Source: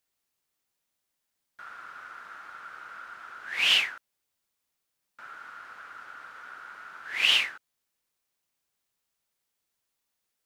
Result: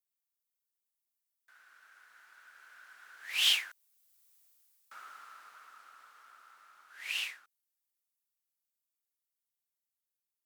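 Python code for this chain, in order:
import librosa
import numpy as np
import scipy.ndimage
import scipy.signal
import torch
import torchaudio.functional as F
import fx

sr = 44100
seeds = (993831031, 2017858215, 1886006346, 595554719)

y = fx.doppler_pass(x, sr, speed_mps=23, closest_m=7.8, pass_at_s=4.38)
y = fx.riaa(y, sr, side='recording')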